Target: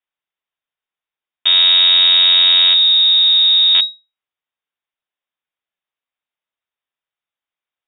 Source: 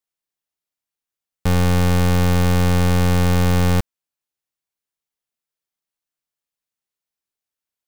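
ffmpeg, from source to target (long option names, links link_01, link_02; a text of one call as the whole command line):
ffmpeg -i in.wav -filter_complex "[0:a]asettb=1/sr,asplit=3[link_01][link_02][link_03];[link_01]atrim=end=2.734[link_04];[link_02]atrim=start=2.73:end=3.75,asetpts=PTS-STARTPTS,afade=type=in:duration=0.004:curve=qsin,afade=type=out:start_time=1.016:duration=0.004:curve=qsin,acrossover=split=300[link_05][link_06];[link_06]acompressor=threshold=-32dB:ratio=6[link_07];[link_05][link_07]amix=inputs=2:normalize=0[link_08];[link_03]atrim=start=3.746[link_09];[link_04][link_08]acrossfade=duration=0.004:curve1=hsin:curve2=qsin[link_10];[link_10][link_09]acrossfade=duration=0.004:curve1=qsin:curve2=hsin,lowpass=frequency=3200:width_type=q:width=0.5098,lowpass=frequency=3200:width_type=q:width=0.6013,lowpass=frequency=3200:width_type=q:width=0.9,lowpass=frequency=3200:width_type=q:width=2.563,afreqshift=-3800,volume=4.5dB" out.wav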